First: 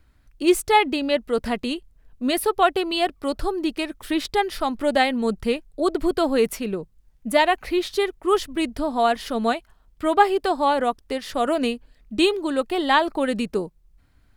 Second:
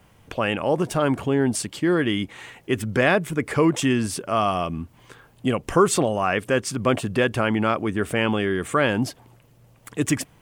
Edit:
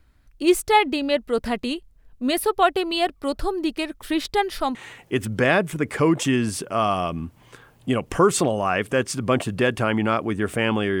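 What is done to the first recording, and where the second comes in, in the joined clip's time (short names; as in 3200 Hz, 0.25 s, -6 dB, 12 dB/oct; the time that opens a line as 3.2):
first
4.75 switch to second from 2.32 s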